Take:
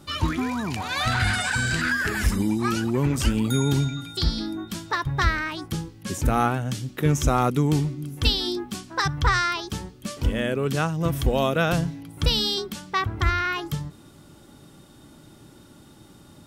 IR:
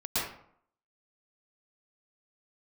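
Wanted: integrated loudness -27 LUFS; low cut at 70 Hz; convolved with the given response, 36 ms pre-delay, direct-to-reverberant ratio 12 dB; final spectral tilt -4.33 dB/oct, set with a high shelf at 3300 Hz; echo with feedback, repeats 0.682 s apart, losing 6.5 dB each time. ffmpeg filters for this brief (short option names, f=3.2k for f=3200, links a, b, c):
-filter_complex "[0:a]highpass=70,highshelf=f=3.3k:g=3.5,aecho=1:1:682|1364|2046|2728|3410|4092:0.473|0.222|0.105|0.0491|0.0231|0.0109,asplit=2[a][b];[1:a]atrim=start_sample=2205,adelay=36[c];[b][c]afir=irnorm=-1:irlink=0,volume=-20.5dB[d];[a][d]amix=inputs=2:normalize=0,volume=-4dB"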